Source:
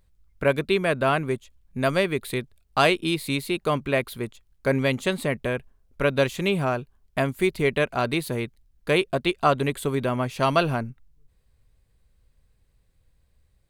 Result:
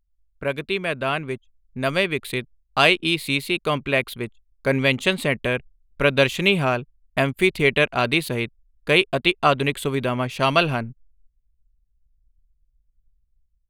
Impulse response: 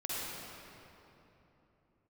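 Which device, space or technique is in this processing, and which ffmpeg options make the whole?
voice memo with heavy noise removal: -af "anlmdn=0.1,dynaudnorm=framelen=650:gausssize=5:maxgain=12dB,adynamicequalizer=threshold=0.0178:dfrequency=2800:dqfactor=1.3:tfrequency=2800:tqfactor=1.3:attack=5:release=100:ratio=0.375:range=4:mode=boostabove:tftype=bell,volume=-4.5dB"

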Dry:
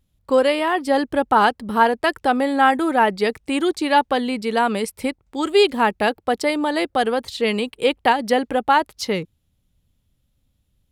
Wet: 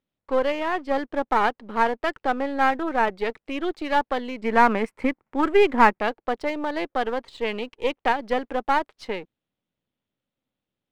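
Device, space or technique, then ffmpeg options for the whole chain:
crystal radio: -filter_complex "[0:a]asettb=1/sr,asplit=3[link_01][link_02][link_03];[link_01]atrim=end=4.424[link_04];[link_02]atrim=start=4.42:end=5.99,asetpts=PTS-STARTPTS,afade=type=in:duration=0.004:curve=qsin,afade=type=out:start_time=1.566:duration=0.004:curve=qsin,equalizer=frequency=125:width_type=o:width=1:gain=7,equalizer=frequency=250:width_type=o:width=1:gain=9,equalizer=frequency=1000:width_type=o:width=1:gain=8,equalizer=frequency=2000:width_type=o:width=1:gain=9,equalizer=frequency=4000:width_type=o:width=1:gain=-11,equalizer=frequency=8000:width_type=o:width=1:gain=7[link_05];[link_03]atrim=start=5.986[link_06];[link_04][link_05]acrossfade=duration=0.004:curve1=hsin:curve2=qsin[link_07];[link_07][link_06]acrossfade=duration=0.004:curve1=qsin:curve2=hsin,highpass=290,lowpass=2700,aeval=exprs='if(lt(val(0),0),0.447*val(0),val(0))':channel_layout=same,volume=-3dB"

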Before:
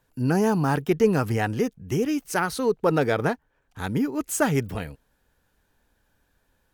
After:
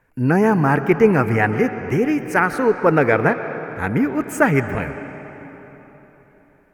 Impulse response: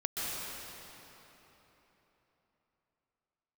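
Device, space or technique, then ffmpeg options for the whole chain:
filtered reverb send: -filter_complex "[0:a]highshelf=frequency=2800:width_type=q:width=3:gain=-8,asplit=2[link_01][link_02];[link_02]highpass=frequency=210:poles=1,lowpass=4900[link_03];[1:a]atrim=start_sample=2205[link_04];[link_03][link_04]afir=irnorm=-1:irlink=0,volume=-13dB[link_05];[link_01][link_05]amix=inputs=2:normalize=0,volume=4.5dB"

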